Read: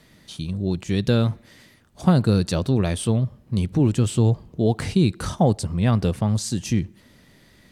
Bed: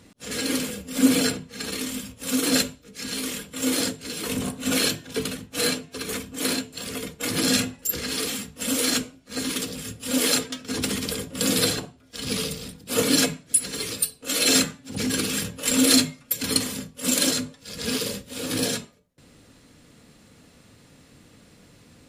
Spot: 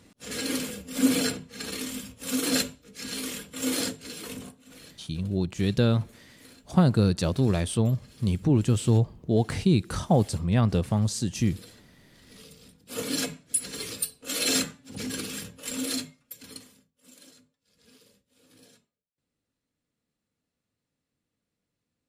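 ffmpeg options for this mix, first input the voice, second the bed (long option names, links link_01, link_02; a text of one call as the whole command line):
ffmpeg -i stem1.wav -i stem2.wav -filter_complex "[0:a]adelay=4700,volume=-3dB[link_01];[1:a]volume=18dB,afade=type=out:start_time=3.91:duration=0.74:silence=0.0668344,afade=type=in:start_time=12.31:duration=1.36:silence=0.0794328,afade=type=out:start_time=14.43:duration=2.41:silence=0.0501187[link_02];[link_01][link_02]amix=inputs=2:normalize=0" out.wav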